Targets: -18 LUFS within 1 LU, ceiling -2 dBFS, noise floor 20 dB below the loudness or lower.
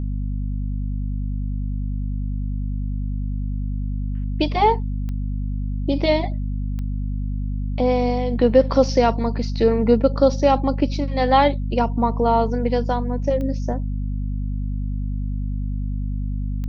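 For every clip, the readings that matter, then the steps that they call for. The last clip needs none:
clicks found 4; hum 50 Hz; highest harmonic 250 Hz; hum level -22 dBFS; loudness -22.5 LUFS; peak level -3.0 dBFS; loudness target -18.0 LUFS
-> de-click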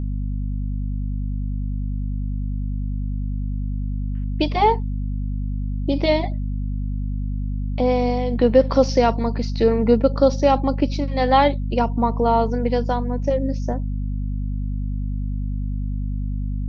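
clicks found 0; hum 50 Hz; highest harmonic 250 Hz; hum level -22 dBFS
-> hum notches 50/100/150/200/250 Hz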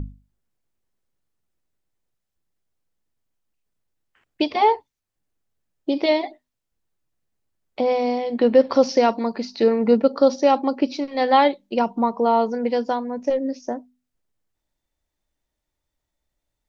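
hum not found; loudness -20.5 LUFS; peak level -3.5 dBFS; loudness target -18.0 LUFS
-> trim +2.5 dB; peak limiter -2 dBFS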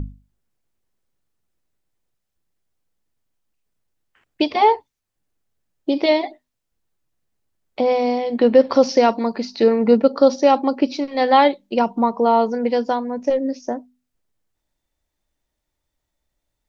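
loudness -18.0 LUFS; peak level -2.0 dBFS; noise floor -79 dBFS

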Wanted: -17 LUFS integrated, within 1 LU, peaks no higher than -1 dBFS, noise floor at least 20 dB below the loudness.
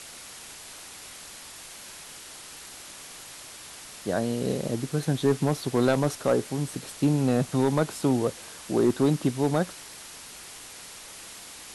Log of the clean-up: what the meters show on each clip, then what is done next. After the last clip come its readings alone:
clipped samples 0.4%; clipping level -14.0 dBFS; noise floor -44 dBFS; noise floor target -46 dBFS; loudness -26.0 LUFS; peak level -14.0 dBFS; loudness target -17.0 LUFS
-> clip repair -14 dBFS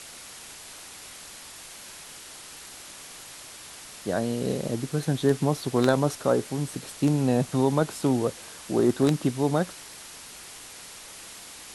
clipped samples 0.0%; noise floor -44 dBFS; noise floor target -46 dBFS
-> noise reduction 6 dB, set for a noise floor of -44 dBFS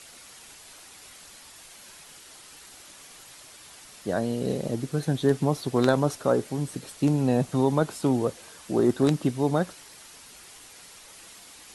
noise floor -49 dBFS; loudness -26.0 LUFS; peak level -5.0 dBFS; loudness target -17.0 LUFS
-> trim +9 dB; peak limiter -1 dBFS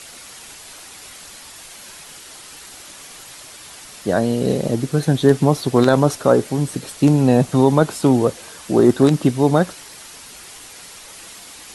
loudness -17.0 LUFS; peak level -1.0 dBFS; noise floor -40 dBFS

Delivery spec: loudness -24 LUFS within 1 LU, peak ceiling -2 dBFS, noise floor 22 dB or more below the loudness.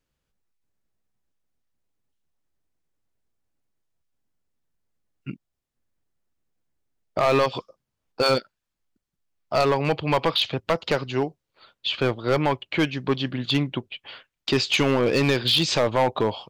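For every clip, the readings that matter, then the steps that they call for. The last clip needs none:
clipped samples 0.9%; clipping level -14.0 dBFS; loudness -23.5 LUFS; peak level -14.0 dBFS; loudness target -24.0 LUFS
-> clip repair -14 dBFS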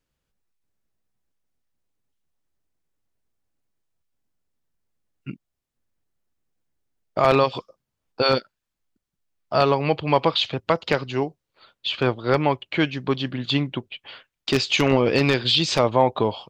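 clipped samples 0.0%; loudness -22.0 LUFS; peak level -5.0 dBFS; loudness target -24.0 LUFS
-> trim -2 dB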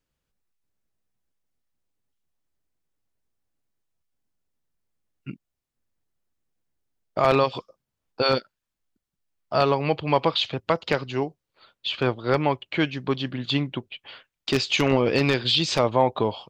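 loudness -24.0 LUFS; peak level -7.0 dBFS; noise floor -84 dBFS

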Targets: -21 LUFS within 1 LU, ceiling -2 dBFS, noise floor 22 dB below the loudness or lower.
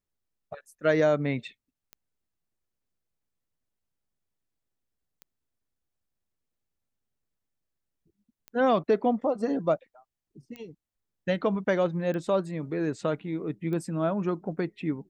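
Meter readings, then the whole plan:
clicks found 6; loudness -28.0 LUFS; peak level -12.0 dBFS; loudness target -21.0 LUFS
-> de-click; trim +7 dB

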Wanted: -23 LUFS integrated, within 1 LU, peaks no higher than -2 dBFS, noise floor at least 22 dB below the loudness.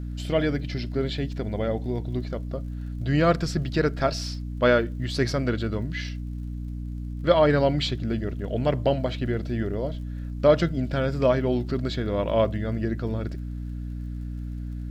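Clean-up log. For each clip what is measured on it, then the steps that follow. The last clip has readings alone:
tick rate 48 per s; hum 60 Hz; highest harmonic 300 Hz; hum level -30 dBFS; loudness -26.5 LUFS; peak level -6.5 dBFS; loudness target -23.0 LUFS
-> de-click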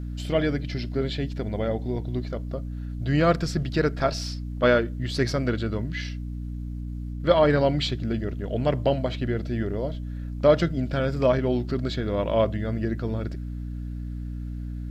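tick rate 0.067 per s; hum 60 Hz; highest harmonic 300 Hz; hum level -30 dBFS
-> hum notches 60/120/180/240/300 Hz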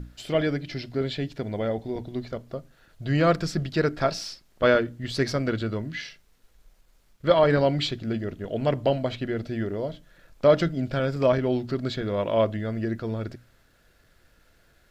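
hum not found; loudness -26.0 LUFS; peak level -6.5 dBFS; loudness target -23.0 LUFS
-> trim +3 dB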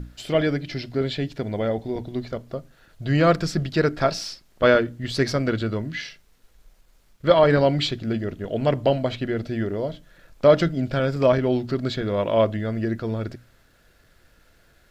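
loudness -23.0 LUFS; peak level -3.5 dBFS; noise floor -59 dBFS

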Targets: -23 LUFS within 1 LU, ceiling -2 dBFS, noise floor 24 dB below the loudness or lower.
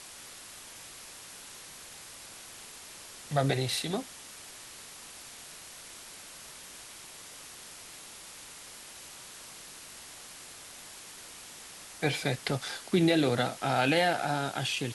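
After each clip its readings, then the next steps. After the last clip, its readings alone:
noise floor -48 dBFS; noise floor target -53 dBFS; loudness -29.0 LUFS; peak level -13.5 dBFS; loudness target -23.0 LUFS
-> noise reduction 6 dB, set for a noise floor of -48 dBFS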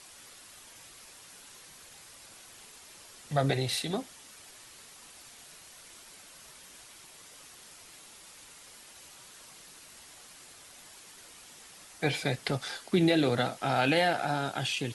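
noise floor -53 dBFS; loudness -29.0 LUFS; peak level -13.5 dBFS; loudness target -23.0 LUFS
-> trim +6 dB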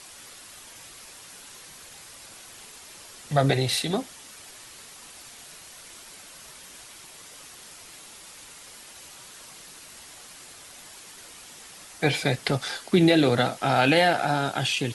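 loudness -23.0 LUFS; peak level -7.5 dBFS; noise floor -47 dBFS

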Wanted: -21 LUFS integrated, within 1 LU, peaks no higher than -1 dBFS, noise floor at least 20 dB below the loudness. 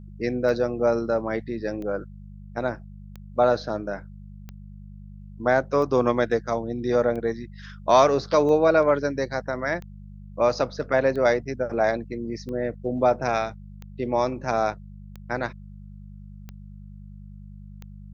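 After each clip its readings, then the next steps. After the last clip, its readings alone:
clicks found 14; hum 50 Hz; highest harmonic 200 Hz; hum level -40 dBFS; loudness -24.5 LUFS; peak level -5.5 dBFS; loudness target -21.0 LUFS
-> de-click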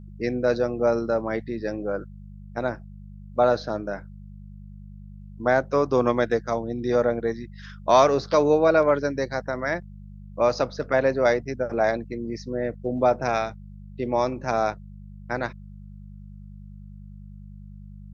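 clicks found 0; hum 50 Hz; highest harmonic 200 Hz; hum level -40 dBFS
-> de-hum 50 Hz, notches 4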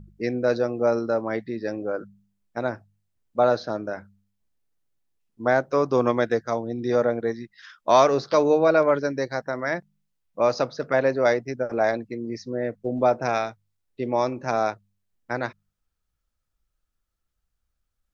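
hum not found; loudness -24.5 LUFS; peak level -5.0 dBFS; loudness target -21.0 LUFS
-> trim +3.5 dB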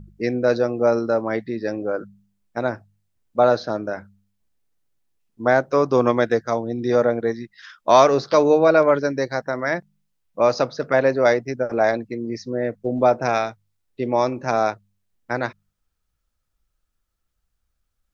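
loudness -21.0 LUFS; peak level -1.5 dBFS; noise floor -75 dBFS

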